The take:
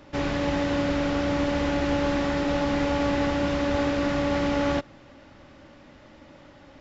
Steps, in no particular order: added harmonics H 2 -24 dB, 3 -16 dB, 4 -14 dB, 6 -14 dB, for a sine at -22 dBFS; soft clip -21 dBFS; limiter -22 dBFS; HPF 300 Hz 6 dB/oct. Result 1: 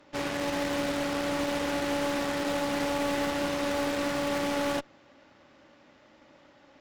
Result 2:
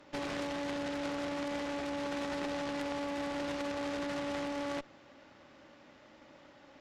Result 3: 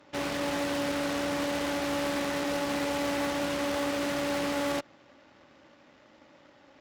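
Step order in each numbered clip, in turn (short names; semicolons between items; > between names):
HPF > added harmonics > soft clip > limiter; limiter > soft clip > HPF > added harmonics; added harmonics > soft clip > limiter > HPF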